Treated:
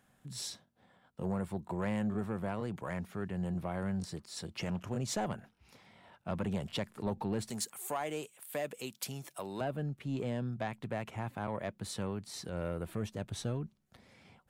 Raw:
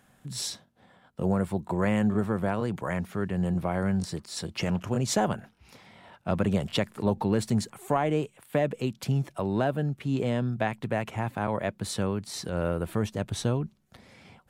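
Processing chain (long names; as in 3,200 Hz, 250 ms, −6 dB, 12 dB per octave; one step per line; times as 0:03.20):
0:07.50–0:09.61: RIAA equalisation recording
soft clipping −18 dBFS, distortion −18 dB
level −7.5 dB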